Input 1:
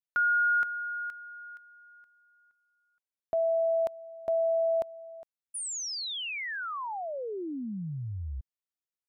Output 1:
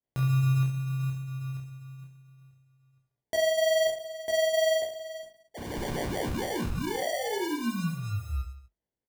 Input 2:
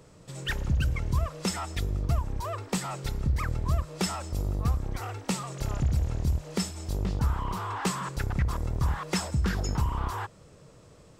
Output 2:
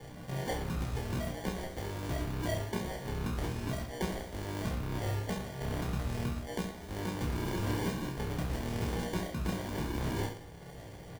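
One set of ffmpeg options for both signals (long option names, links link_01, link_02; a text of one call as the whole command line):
ffmpeg -i in.wav -filter_complex "[0:a]lowpass=6000,adynamicequalizer=threshold=0.00158:dfrequency=3800:dqfactor=3.1:tfrequency=3800:tqfactor=3.1:attack=5:release=100:ratio=0.375:range=3:mode=cutabove:tftype=bell,acrossover=split=120[link_01][link_02];[link_01]acompressor=threshold=-47dB:ratio=1.5:release=277:knee=2.83:detection=peak[link_03];[link_03][link_02]amix=inputs=2:normalize=0,acrossover=split=170[link_04][link_05];[link_04]alimiter=level_in=7.5dB:limit=-24dB:level=0:latency=1,volume=-7.5dB[link_06];[link_06][link_05]amix=inputs=2:normalize=0,acompressor=threshold=-36dB:ratio=3:attack=0.94:release=880:knee=1:detection=rms,asplit=2[link_07][link_08];[link_08]acrusher=bits=5:mode=log:mix=0:aa=0.000001,volume=-3.5dB[link_09];[link_07][link_09]amix=inputs=2:normalize=0,flanger=delay=8.7:depth=3.3:regen=-64:speed=0.8:shape=triangular,acrusher=samples=34:mix=1:aa=0.000001,asplit=2[link_10][link_11];[link_11]adelay=17,volume=-4.5dB[link_12];[link_10][link_12]amix=inputs=2:normalize=0,aecho=1:1:30|67.5|114.4|173|246.2:0.631|0.398|0.251|0.158|0.1,volume=3.5dB" out.wav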